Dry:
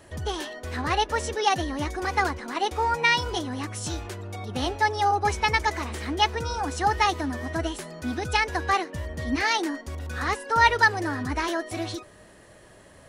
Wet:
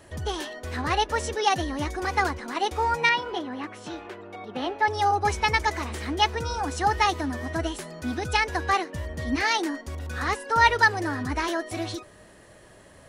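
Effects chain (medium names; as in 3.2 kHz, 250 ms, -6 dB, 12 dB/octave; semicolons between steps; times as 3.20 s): 3.09–4.88 s: three-band isolator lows -22 dB, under 190 Hz, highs -18 dB, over 3.4 kHz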